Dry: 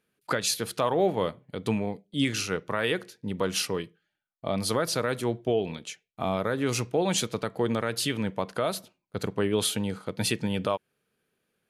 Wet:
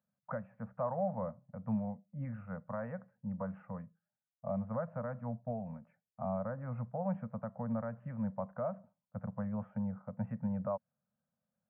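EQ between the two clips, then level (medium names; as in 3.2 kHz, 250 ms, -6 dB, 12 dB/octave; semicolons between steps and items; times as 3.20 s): Gaussian low-pass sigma 7.9 samples; high-pass 85 Hz; Chebyshev band-stop 230–550 Hz, order 3; -4.5 dB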